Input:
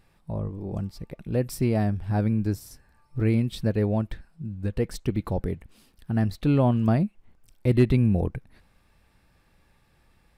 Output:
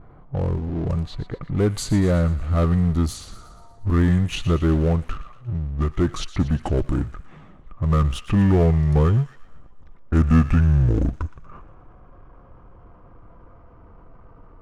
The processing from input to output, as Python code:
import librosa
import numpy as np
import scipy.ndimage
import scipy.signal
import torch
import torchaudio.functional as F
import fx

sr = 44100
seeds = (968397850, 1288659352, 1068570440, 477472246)

p1 = fx.speed_glide(x, sr, from_pct=86, to_pct=56)
p2 = fx.peak_eq(p1, sr, hz=1200.0, db=10.0, octaves=0.22)
p3 = fx.power_curve(p2, sr, exponent=0.7)
p4 = fx.env_lowpass(p3, sr, base_hz=710.0, full_db=-19.5)
p5 = p4 + fx.echo_wet_highpass(p4, sr, ms=118, feedback_pct=54, hz=1500.0, wet_db=-13.0, dry=0)
y = p5 * librosa.db_to_amplitude(1.5)